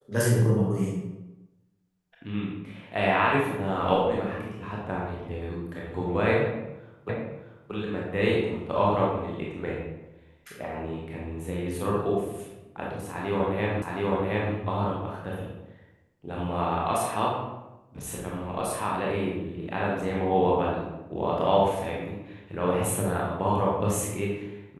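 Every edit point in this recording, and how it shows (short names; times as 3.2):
7.09 repeat of the last 0.63 s
13.82 repeat of the last 0.72 s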